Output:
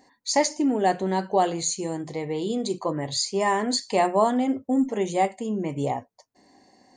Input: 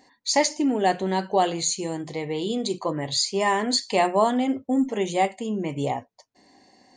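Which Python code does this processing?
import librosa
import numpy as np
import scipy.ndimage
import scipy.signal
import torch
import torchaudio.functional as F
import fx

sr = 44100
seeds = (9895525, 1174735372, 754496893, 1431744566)

y = fx.peak_eq(x, sr, hz=3100.0, db=-6.0, octaves=1.2)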